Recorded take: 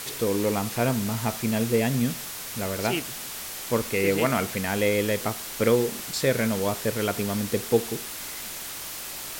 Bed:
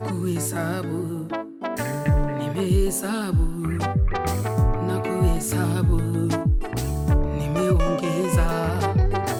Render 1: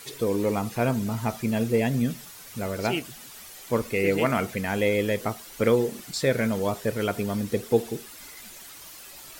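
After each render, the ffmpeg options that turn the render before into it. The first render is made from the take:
-af "afftdn=nr=11:nf=-36"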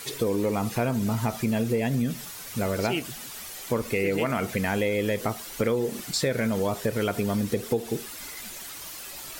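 -filter_complex "[0:a]asplit=2[s0][s1];[s1]alimiter=limit=0.112:level=0:latency=1,volume=0.75[s2];[s0][s2]amix=inputs=2:normalize=0,acompressor=threshold=0.0794:ratio=5"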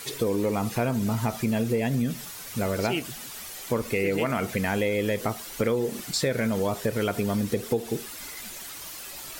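-af anull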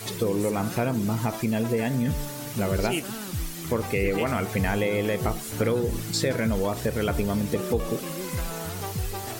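-filter_complex "[1:a]volume=0.282[s0];[0:a][s0]amix=inputs=2:normalize=0"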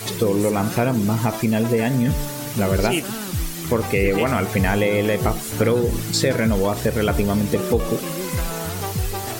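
-af "volume=2"

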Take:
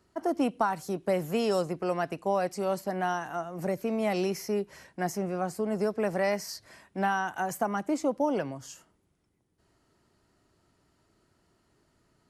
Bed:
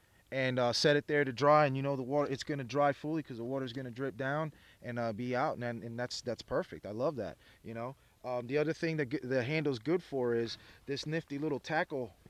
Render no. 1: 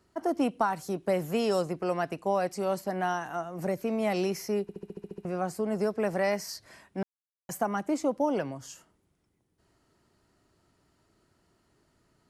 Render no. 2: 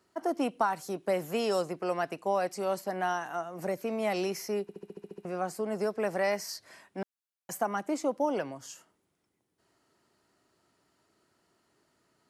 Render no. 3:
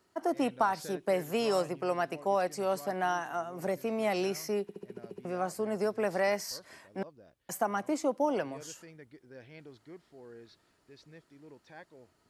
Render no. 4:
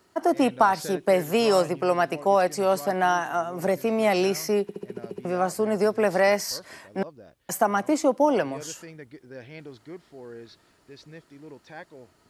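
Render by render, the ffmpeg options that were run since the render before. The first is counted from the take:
-filter_complex "[0:a]asplit=12[s0][s1][s2][s3][s4][s5][s6][s7][s8][s9][s10][s11];[s0]atrim=end=4.692[s12];[s1]atrim=start=4.618:end=4.692[s13];[s2]atrim=start=4.618:end=4.692[s14];[s3]atrim=start=4.618:end=4.692[s15];[s4]atrim=start=4.618:end=4.692[s16];[s5]atrim=start=4.618:end=4.692[s17];[s6]atrim=start=4.618:end=4.692[s18];[s7]atrim=start=4.618:end=4.692[s19];[s8]atrim=start=4.618:end=4.692[s20];[s9]atrim=start=5.248:end=7.03,asetpts=PTS-STARTPTS,afade=t=out:st=1.778:d=0.004:c=hsin[s21];[s10]atrim=start=7.03:end=7.49,asetpts=PTS-STARTPTS,volume=0[s22];[s11]atrim=start=7.49,asetpts=PTS-STARTPTS,afade=t=in:d=0.004:c=hsin[s23];[s12][s13]acrossfade=d=0.004:c1=hsin:c2=hsin[s24];[s24][s14]acrossfade=d=0.004:c1=hsin:c2=hsin[s25];[s25][s15]acrossfade=d=0.004:c1=hsin:c2=hsin[s26];[s26][s16]acrossfade=d=0.004:c1=hsin:c2=hsin[s27];[s27][s17]acrossfade=d=0.004:c1=hsin:c2=hsin[s28];[s28][s18]acrossfade=d=0.004:c1=hsin:c2=hsin[s29];[s29][s19]acrossfade=d=0.004:c1=hsin:c2=hsin[s30];[s30][s20]acrossfade=d=0.004:c1=hsin:c2=hsin[s31];[s21][s22][s23]concat=n=3:v=0:a=1[s32];[s31][s32]acrossfade=d=0.004:c1=hsin:c2=hsin"
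-af "highpass=f=320:p=1"
-filter_complex "[1:a]volume=0.126[s0];[0:a][s0]amix=inputs=2:normalize=0"
-af "volume=2.66"

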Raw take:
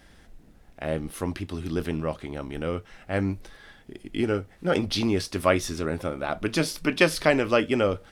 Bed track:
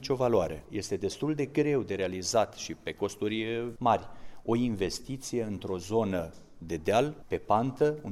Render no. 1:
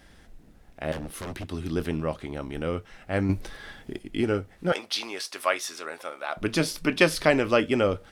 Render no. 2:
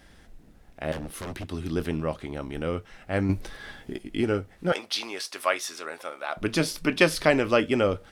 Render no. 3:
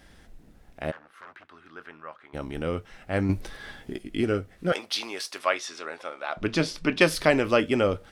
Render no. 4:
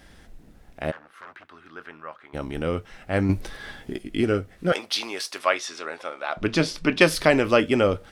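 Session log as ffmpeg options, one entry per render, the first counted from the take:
-filter_complex "[0:a]asettb=1/sr,asplit=3[s0][s1][s2];[s0]atrim=end=0.924[s3];[s1]atrim=start=0.92:end=1.48,asetpts=PTS-STARTPTS,afade=t=in:d=0.004:c=qsin,afade=t=out:st=0.556:d=0.004:c=qsin,aeval=exprs='0.0355*(abs(mod(val(0)/0.0355+3,4)-2)-1)':c=same[s4];[s2]atrim=start=1.476[s5];[s3][s4]acrossfade=d=0.004:c1=hsin:c2=qsin[s6];[s6][s5]acrossfade=d=0.004:c1=qsin:c2=hsin,asettb=1/sr,asplit=3[s7][s8][s9];[s7]atrim=end=3.294[s10];[s8]atrim=start=3.29:end=3.99,asetpts=PTS-STARTPTS,afade=t=in:d=0.004:c=qsin,afade=t=out:st=0.696:d=0.004:c=qsin,acontrast=59[s11];[s9]atrim=start=3.986[s12];[s10][s11]acrossfade=d=0.004:c1=hsin:c2=qsin[s13];[s13][s12]acrossfade=d=0.004:c1=qsin:c2=hsin,asettb=1/sr,asplit=3[s14][s15][s16];[s14]atrim=end=4.724[s17];[s15]atrim=start=4.72:end=6.37,asetpts=PTS-STARTPTS,afade=t=in:d=0.004:c=qsin,afade=t=out:st=1.646:d=0.004:c=qsin,highpass=760[s18];[s16]atrim=start=6.366[s19];[s17][s18]acrossfade=d=0.004:c1=hsin:c2=qsin[s20];[s20][s19]acrossfade=d=0.004:c1=qsin:c2=hsin"
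-filter_complex "[0:a]asettb=1/sr,asplit=3[s0][s1][s2];[s0]atrim=end=3.594[s3];[s1]atrim=start=3.59:end=4.14,asetpts=PTS-STARTPTS,afade=t=in:d=0.004:c=qsin,afade=t=out:st=0.546:d=0.004:c=qsin,asplit=2[s4][s5];[s5]adelay=16,volume=0.447[s6];[s4][s6]amix=inputs=2:normalize=0,atrim=end_sample=24255[s7];[s2]atrim=start=4.136[s8];[s3][s7]acrossfade=d=0.004:c1=hsin:c2=qsin[s9];[s9][s8]acrossfade=d=0.004:c1=qsin:c2=hsin"
-filter_complex "[0:a]asplit=3[s0][s1][s2];[s0]afade=t=out:st=0.9:d=0.02[s3];[s1]bandpass=f=1400:t=q:w=2.7,afade=t=in:st=0.9:d=0.02,afade=t=out:st=2.33:d=0.02[s4];[s2]afade=t=in:st=2.33:d=0.02[s5];[s3][s4][s5]amix=inputs=3:normalize=0,asettb=1/sr,asplit=3[s6][s7][s8];[s6]atrim=end=3.964[s9];[s7]atrim=start=3.96:end=4.74,asetpts=PTS-STARTPTS,afade=t=in:d=0.004:c=qsin,afade=t=out:st=0.776:d=0.004:c=qsin,bandreject=f=870:w=5.5[s10];[s8]atrim=start=4.736[s11];[s9][s10]acrossfade=d=0.004:c1=hsin:c2=qsin[s12];[s12][s11]acrossfade=d=0.004:c1=qsin:c2=hsin,asettb=1/sr,asplit=3[s13][s14][s15];[s13]atrim=end=5.384[s16];[s14]atrim=start=5.38:end=7.01,asetpts=PTS-STARTPTS,afade=t=in:d=0.004:c=qsin,afade=t=out:st=1.626:d=0.004:c=qsin,lowpass=6000[s17];[s15]atrim=start=7.006[s18];[s16][s17]acrossfade=d=0.004:c1=hsin:c2=qsin[s19];[s19][s18]acrossfade=d=0.004:c1=qsin:c2=hsin"
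-af "volume=1.41,alimiter=limit=0.708:level=0:latency=1"

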